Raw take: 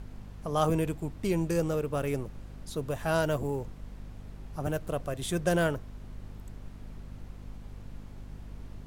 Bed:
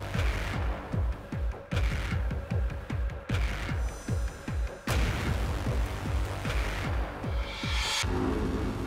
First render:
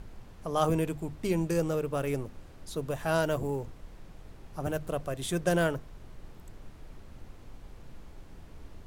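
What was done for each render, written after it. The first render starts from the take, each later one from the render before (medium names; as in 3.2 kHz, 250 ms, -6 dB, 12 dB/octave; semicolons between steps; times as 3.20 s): hum notches 50/100/150/200/250 Hz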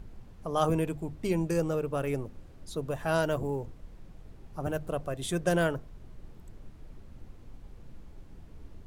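noise reduction 6 dB, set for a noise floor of -50 dBFS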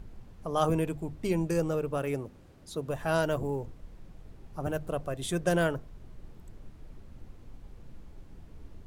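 1.98–2.88 s: high-pass 100 Hz 6 dB/octave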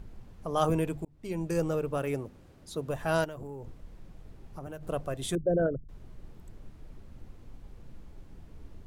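1.05–1.62 s: fade in; 3.24–4.83 s: compression, threshold -37 dBFS; 5.35–5.89 s: resonances exaggerated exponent 3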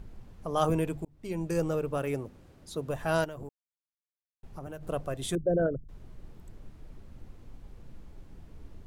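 3.49–4.43 s: mute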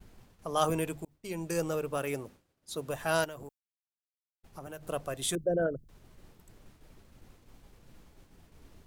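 expander -43 dBFS; tilt EQ +2 dB/octave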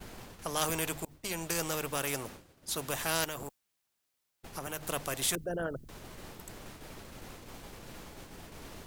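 spectrum-flattening compressor 2:1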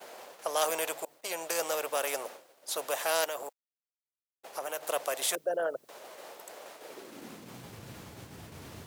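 bit crusher 11-bit; high-pass sweep 570 Hz -> 98 Hz, 6.76–7.77 s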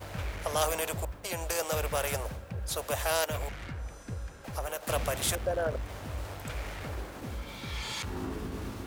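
add bed -7.5 dB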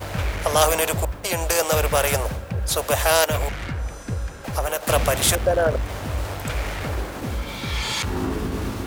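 trim +11 dB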